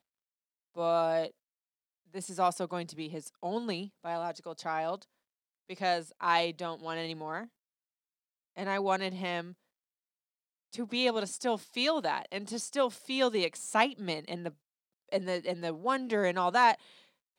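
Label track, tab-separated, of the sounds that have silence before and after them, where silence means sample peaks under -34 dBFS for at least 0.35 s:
0.780000	1.270000	sound
2.160000	4.960000	sound
5.710000	7.440000	sound
8.580000	9.410000	sound
10.740000	14.490000	sound
15.120000	16.740000	sound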